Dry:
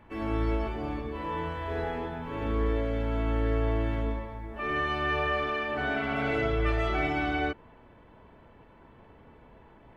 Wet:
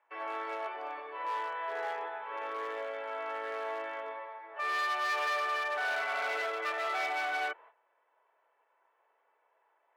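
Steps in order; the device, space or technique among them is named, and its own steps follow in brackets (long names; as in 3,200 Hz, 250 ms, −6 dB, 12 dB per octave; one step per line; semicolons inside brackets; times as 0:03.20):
walkie-talkie (band-pass filter 530–2,200 Hz; hard clipping −30.5 dBFS, distortion −13 dB; noise gate −55 dBFS, range −14 dB)
Bessel high-pass filter 650 Hz, order 6
level +3 dB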